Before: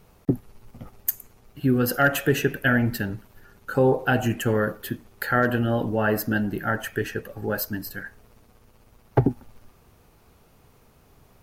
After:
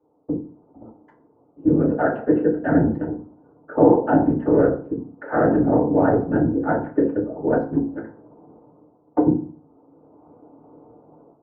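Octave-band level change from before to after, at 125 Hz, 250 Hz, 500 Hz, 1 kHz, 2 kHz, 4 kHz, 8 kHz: -1.0 dB, +7.0 dB, +5.5 dB, +3.0 dB, -7.5 dB, under -30 dB, under -40 dB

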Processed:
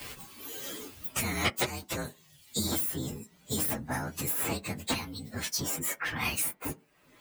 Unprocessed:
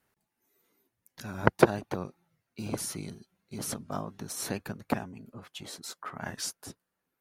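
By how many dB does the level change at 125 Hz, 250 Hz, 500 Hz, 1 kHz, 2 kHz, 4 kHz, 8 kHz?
-0.5 dB, -1.5 dB, -6.5 dB, -2.5 dB, +3.0 dB, +7.0 dB, +6.0 dB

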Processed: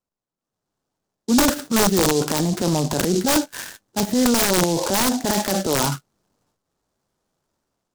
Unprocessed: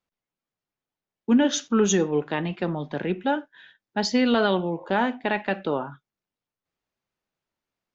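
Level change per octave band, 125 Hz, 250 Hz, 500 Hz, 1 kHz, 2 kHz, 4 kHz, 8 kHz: +7.5 dB, +3.5 dB, +2.5 dB, +4.0 dB, +2.5 dB, +8.0 dB, no reading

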